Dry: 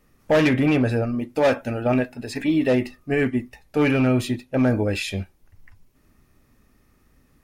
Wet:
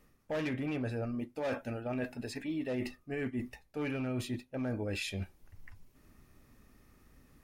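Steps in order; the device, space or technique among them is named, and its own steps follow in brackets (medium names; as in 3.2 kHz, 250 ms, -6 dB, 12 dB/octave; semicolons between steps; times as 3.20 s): compression on the reversed sound (reverse; compression 4:1, threshold -34 dBFS, peak gain reduction 16 dB; reverse); trim -2 dB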